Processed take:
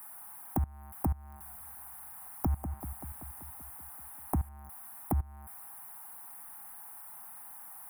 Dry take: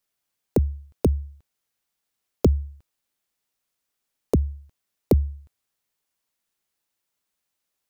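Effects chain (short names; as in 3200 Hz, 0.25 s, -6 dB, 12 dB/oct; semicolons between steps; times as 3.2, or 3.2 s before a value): zero-crossing step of -30.5 dBFS; EQ curve 310 Hz 0 dB, 470 Hz -21 dB, 780 Hz +15 dB, 1800 Hz +2 dB, 3600 Hz -18 dB, 6700 Hz -18 dB, 9700 Hz +10 dB; level quantiser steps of 21 dB; 1.17–4.49 warbling echo 0.192 s, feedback 68%, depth 112 cents, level -9 dB; gain -6 dB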